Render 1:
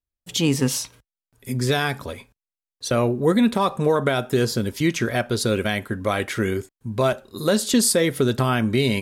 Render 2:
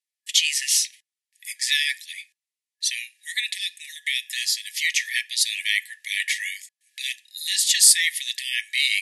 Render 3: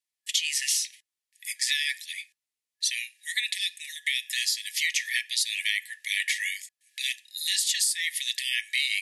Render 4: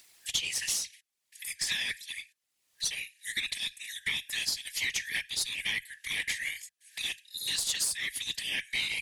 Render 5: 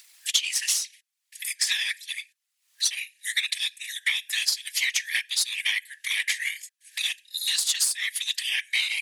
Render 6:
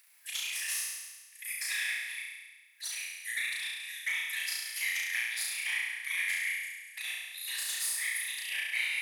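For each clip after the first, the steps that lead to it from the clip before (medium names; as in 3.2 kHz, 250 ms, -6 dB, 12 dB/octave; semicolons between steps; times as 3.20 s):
FFT band-pass 1.7–12 kHz; trim +7 dB
compression 16:1, threshold -22 dBFS, peak gain reduction 13.5 dB
Chebyshev shaper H 4 -22 dB, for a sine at -10.5 dBFS; whisper effect; upward compressor, threshold -29 dBFS; trim -5 dB
high-pass 1.2 kHz 12 dB/octave; transient shaper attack +3 dB, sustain -4 dB; trim +5.5 dB
high-order bell 5 kHz -10 dB; hard clipper -19 dBFS, distortion -23 dB; on a send: flutter echo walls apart 5.9 m, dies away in 1.3 s; on the sum: trim -7.5 dB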